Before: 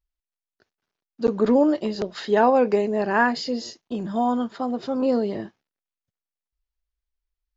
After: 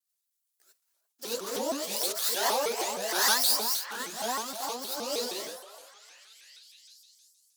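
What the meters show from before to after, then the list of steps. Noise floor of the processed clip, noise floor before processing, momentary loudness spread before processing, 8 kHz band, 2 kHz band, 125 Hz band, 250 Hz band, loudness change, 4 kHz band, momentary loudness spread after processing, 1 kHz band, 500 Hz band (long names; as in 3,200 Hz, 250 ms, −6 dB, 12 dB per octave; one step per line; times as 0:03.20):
−81 dBFS, below −85 dBFS, 12 LU, can't be measured, −5.5 dB, below −20 dB, −19.5 dB, −5.5 dB, +8.0 dB, 13 LU, −8.0 dB, −12.0 dB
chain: running median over 15 samples
in parallel at 0 dB: downward compressor, threshold −26 dBFS, peak gain reduction 12.5 dB
on the sum: first difference
on a send: echo through a band-pass that steps 346 ms, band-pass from 800 Hz, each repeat 0.7 octaves, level −6 dB
on the sum: reverb whose tail is shaped and stops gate 110 ms rising, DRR −7 dB
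soft clipping −15 dBFS, distortion −29 dB
bass and treble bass −7 dB, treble +11 dB
pitch modulation by a square or saw wave saw up 6.4 Hz, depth 250 cents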